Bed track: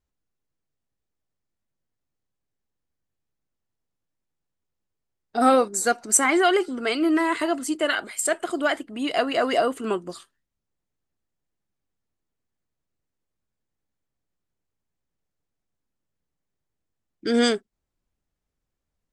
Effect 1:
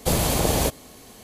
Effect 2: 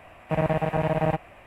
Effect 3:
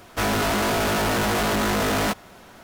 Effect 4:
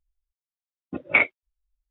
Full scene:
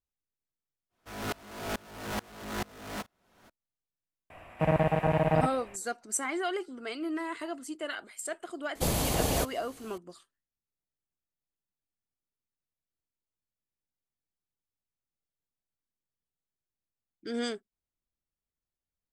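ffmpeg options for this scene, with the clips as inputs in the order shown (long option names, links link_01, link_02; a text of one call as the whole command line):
ffmpeg -i bed.wav -i cue0.wav -i cue1.wav -i cue2.wav -filter_complex "[0:a]volume=-13dB[link_01];[3:a]aeval=exprs='val(0)*pow(10,-28*if(lt(mod(-2.3*n/s,1),2*abs(-2.3)/1000),1-mod(-2.3*n/s,1)/(2*abs(-2.3)/1000),(mod(-2.3*n/s,1)-2*abs(-2.3)/1000)/(1-2*abs(-2.3)/1000))/20)':channel_layout=same,atrim=end=2.63,asetpts=PTS-STARTPTS,volume=-8dB,afade=type=in:duration=0.05,afade=type=out:start_time=2.58:duration=0.05,adelay=890[link_02];[2:a]atrim=end=1.46,asetpts=PTS-STARTPTS,volume=-1.5dB,afade=type=in:duration=0.004:curve=hsin,afade=type=out:start_time=1.456:duration=0.004:curve=hsin,adelay=4300[link_03];[1:a]atrim=end=1.23,asetpts=PTS-STARTPTS,volume=-7dB,afade=type=in:duration=0.004:curve=hsin,afade=type=out:start_time=1.226:duration=0.004:curve=hsin,adelay=8750[link_04];[link_01][link_02][link_03][link_04]amix=inputs=4:normalize=0" out.wav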